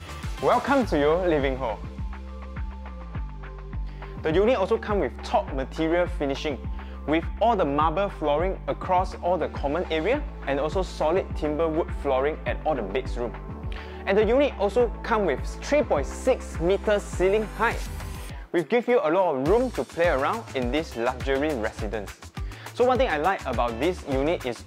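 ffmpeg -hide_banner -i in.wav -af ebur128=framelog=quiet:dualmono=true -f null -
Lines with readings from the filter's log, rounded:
Integrated loudness:
  I:         -22.1 LUFS
  Threshold: -32.7 LUFS
Loudness range:
  LRA:         3.0 LU
  Threshold: -42.8 LUFS
  LRA low:   -24.4 LUFS
  LRA high:  -21.3 LUFS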